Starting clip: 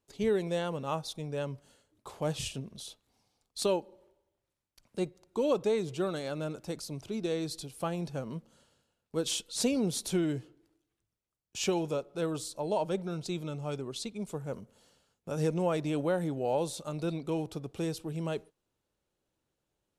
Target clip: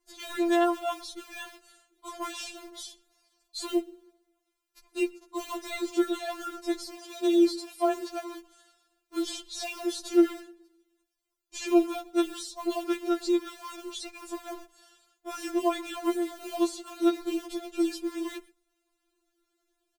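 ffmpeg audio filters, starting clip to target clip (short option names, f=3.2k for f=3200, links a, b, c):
-filter_complex "[0:a]asplit=3[a][b][c];[a]afade=t=out:st=2.31:d=0.02[d];[b]bandreject=f=50:t=h:w=6,bandreject=f=100:t=h:w=6,bandreject=f=150:t=h:w=6,bandreject=f=200:t=h:w=6,bandreject=f=250:t=h:w=6,bandreject=f=300:t=h:w=6,bandreject=f=350:t=h:w=6,bandreject=f=400:t=h:w=6,bandreject=f=450:t=h:w=6,afade=t=in:st=2.31:d=0.02,afade=t=out:st=3.67:d=0.02[e];[c]afade=t=in:st=3.67:d=0.02[f];[d][e][f]amix=inputs=3:normalize=0,acrossover=split=520|2200|7400[g][h][i][j];[g]acompressor=threshold=-32dB:ratio=4[k];[h]acompressor=threshold=-34dB:ratio=4[l];[i]acompressor=threshold=-46dB:ratio=4[m];[j]acompressor=threshold=-58dB:ratio=4[n];[k][l][m][n]amix=inputs=4:normalize=0,asplit=2[o][p];[p]adelay=122.4,volume=-24dB,highshelf=f=4k:g=-2.76[q];[o][q]amix=inputs=2:normalize=0,acrossover=split=170|1700[r][s][t];[r]aeval=exprs='(mod(376*val(0)+1,2)-1)/376':c=same[u];[s]acrusher=bits=6:mode=log:mix=0:aa=0.000001[v];[u][v][t]amix=inputs=3:normalize=0,asettb=1/sr,asplit=3[w][x][y];[w]atrim=end=6.944[z];[x]atrim=start=6.94:end=8.28,asetpts=PTS-STARTPTS,afade=t=in:d=0.004:c=qsin,afade=t=out:st=1.336:d=0.004:c=qsin,afreqshift=17[aa];[y]atrim=start=8.276[ab];[z][aa]acrossfade=d=0.004:c1=hsin:c2=qsin[ac];[ac][ab]acrossfade=d=0.004:c1=qsin:c2=hsin,afftfilt=real='re*4*eq(mod(b,16),0)':imag='im*4*eq(mod(b,16),0)':win_size=2048:overlap=0.75,volume=8.5dB"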